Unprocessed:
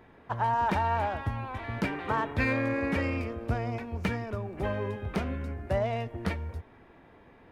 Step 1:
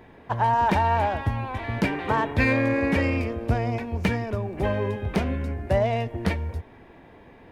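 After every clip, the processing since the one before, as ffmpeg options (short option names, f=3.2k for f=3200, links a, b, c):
-af "equalizer=f=1.3k:t=o:w=0.38:g=-6,volume=6.5dB"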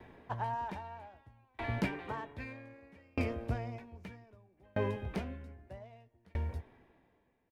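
-filter_complex "[0:a]asplit=2[a][b];[b]adelay=16,volume=-12dB[c];[a][c]amix=inputs=2:normalize=0,aeval=exprs='val(0)*pow(10,-37*if(lt(mod(0.63*n/s,1),2*abs(0.63)/1000),1-mod(0.63*n/s,1)/(2*abs(0.63)/1000),(mod(0.63*n/s,1)-2*abs(0.63)/1000)/(1-2*abs(0.63)/1000))/20)':c=same,volume=-4dB"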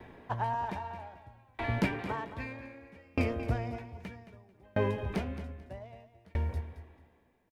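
-af "aecho=1:1:220|440|660:0.237|0.0522|0.0115,volume=4dB"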